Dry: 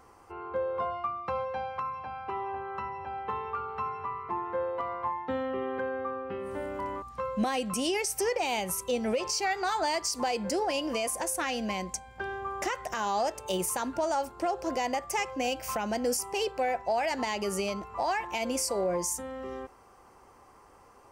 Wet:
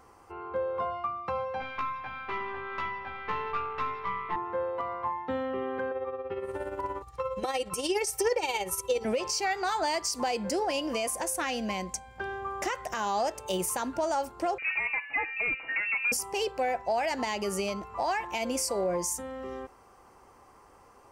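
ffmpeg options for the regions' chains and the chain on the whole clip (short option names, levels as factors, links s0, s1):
-filter_complex "[0:a]asettb=1/sr,asplit=3[s0][s1][s2];[s0]atrim=end=1.604[s3];[s1]atrim=start=1.6:end=4.36,asetpts=PTS-STARTPTS,afade=t=in:d=0.004:c=qsin,afade=t=out:st=2.756:d=0.004:c=qsin,equalizer=f=2100:t=o:w=0.87:g=12.5,aeval=exprs='(tanh(15.8*val(0)+0.65)-tanh(0.65))/15.8':c=same,asplit=2[s4][s5];[s5]adelay=16,volume=0.75[s6];[s4][s6]amix=inputs=2:normalize=0,atrim=end_sample=121716[s7];[s2]atrim=start=4.356[s8];[s3][s7]acrossfade=d=0.004:c1=hsin:c2=qsin[s9];[s9][s8]acrossfade=d=0.004:c1=qsin:c2=hsin,asettb=1/sr,asplit=3[s10][s11][s12];[s10]atrim=end=5.914[s13];[s11]atrim=start=5.91:end=9.05,asetpts=PTS-STARTPTS,afade=t=in:d=0.004:c=qsin,afade=t=out:st=3.136:d=0.004:c=qsin,highpass=42,tremolo=f=17:d=0.58,aecho=1:1:2.2:0.85,atrim=end_sample=138474[s14];[s12]atrim=start=9.046[s15];[s13][s14]acrossfade=d=0.004:c1=hsin:c2=qsin[s16];[s16][s15]acrossfade=d=0.004:c1=qsin:c2=hsin,asettb=1/sr,asplit=3[s17][s18][s19];[s17]atrim=end=14.584[s20];[s18]atrim=start=14.58:end=16.12,asetpts=PTS-STARTPTS,afade=t=in:d=0.004:c=qsin,afade=t=out:st=1.536:d=0.004:c=qsin,aecho=1:1:5.8:0.51,atrim=end_sample=67914,volume=15.8,asoftclip=hard,volume=0.0631,lowpass=f=2500:t=q:w=0.5098,lowpass=f=2500:t=q:w=0.6013,lowpass=f=2500:t=q:w=0.9,lowpass=f=2500:t=q:w=2.563,afreqshift=-2900[s21];[s19]atrim=start=16.116[s22];[s20][s21]acrossfade=d=0.004:c1=hsin:c2=qsin[s23];[s23][s22]acrossfade=d=0.004:c1=qsin:c2=hsin"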